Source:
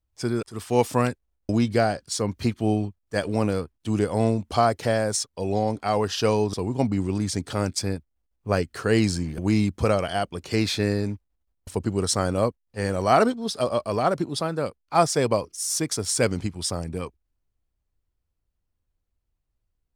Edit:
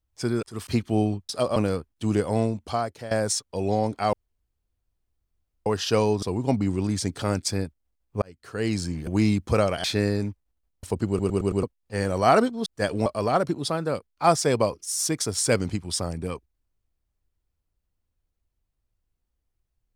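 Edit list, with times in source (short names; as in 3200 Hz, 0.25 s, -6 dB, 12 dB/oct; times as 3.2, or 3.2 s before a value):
0.67–2.38 cut
3–3.4 swap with 13.5–13.77
4.03–4.95 fade out, to -15.5 dB
5.97 insert room tone 1.53 s
8.53–9.4 fade in
10.15–10.68 cut
11.92 stutter in place 0.11 s, 5 plays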